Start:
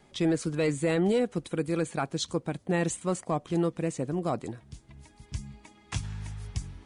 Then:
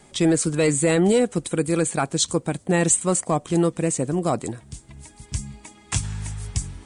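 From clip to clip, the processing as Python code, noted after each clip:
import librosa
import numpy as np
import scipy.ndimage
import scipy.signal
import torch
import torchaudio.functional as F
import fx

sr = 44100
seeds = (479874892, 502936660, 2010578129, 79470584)

y = fx.peak_eq(x, sr, hz=8300.0, db=12.5, octaves=0.66)
y = y * 10.0 ** (7.0 / 20.0)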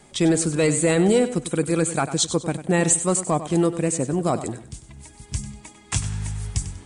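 y = fx.echo_feedback(x, sr, ms=97, feedback_pct=29, wet_db=-12.5)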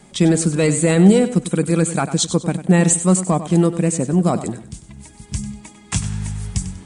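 y = fx.peak_eq(x, sr, hz=190.0, db=10.0, octaves=0.45)
y = y * 10.0 ** (2.0 / 20.0)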